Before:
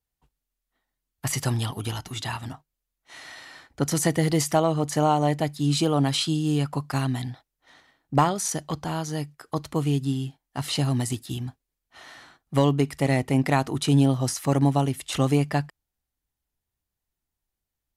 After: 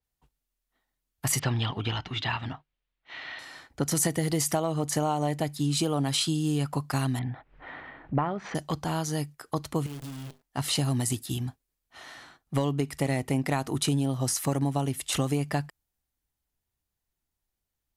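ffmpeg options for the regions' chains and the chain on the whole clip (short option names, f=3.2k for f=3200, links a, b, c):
-filter_complex "[0:a]asettb=1/sr,asplit=3[a][b][c];[a]atrim=end=1.394[d];[b]atrim=start=1.39:end=3.39,asetpts=PTS-STARTPTS,afade=t=in:d=0.004:c=qsin,afade=t=out:st=1.996:d=0.004:c=qsin,lowpass=f=3.2k:w=0.5412,lowpass=f=3.2k:w=1.3066,highshelf=f=2.3k:g=10.5[e];[c]atrim=start=3.386[f];[d][e]acrossfade=d=0.004:c1=hsin:c2=qsin[g];[g][f]acrossfade=d=0.004:c1=qsin:c2=hsin,asettb=1/sr,asplit=3[h][i][j];[h]atrim=end=7.194[k];[i]atrim=start=7.19:end=8.55,asetpts=PTS-STARTPTS,afade=t=in:d=0.004:c=qsin,afade=t=out:st=1.356:d=0.004:c=qsin,lowpass=f=2.4k:w=0.5412,lowpass=f=2.4k:w=1.3066,acompressor=mode=upward:threshold=-28dB:ratio=2.5:attack=3.2:release=140:knee=2.83:detection=peak[l];[j]atrim=start=8.546[m];[k][l]acrossfade=d=0.004:c1=hsin:c2=qsin[n];[n][m]acrossfade=d=0.004:c1=qsin:c2=hsin,asettb=1/sr,asplit=3[o][p][q];[o]atrim=end=9.864[r];[p]atrim=start=9.86:end=10.42,asetpts=PTS-STARTPTS,afade=t=in:d=0.004:c=qsin,afade=t=out:st=0.556:d=0.004:c=qsin,bandreject=f=50:t=h:w=6,bandreject=f=100:t=h:w=6,bandreject=f=150:t=h:w=6,bandreject=f=200:t=h:w=6,bandreject=f=250:t=h:w=6,bandreject=f=300:t=h:w=6,bandreject=f=350:t=h:w=6,bandreject=f=400:t=h:w=6,bandreject=f=450:t=h:w=6,acompressor=threshold=-35dB:ratio=12:attack=3.2:release=140:knee=1:detection=peak,acrusher=bits=8:dc=4:mix=0:aa=0.000001[s];[q]atrim=start=10.416[t];[r][s]acrossfade=d=0.004:c1=hsin:c2=qsin[u];[u][t]acrossfade=d=0.004:c1=qsin:c2=hsin,acompressor=threshold=-23dB:ratio=6,adynamicequalizer=threshold=0.00562:dfrequency=6600:dqfactor=0.7:tfrequency=6600:tqfactor=0.7:attack=5:release=100:ratio=0.375:range=3:mode=boostabove:tftype=highshelf"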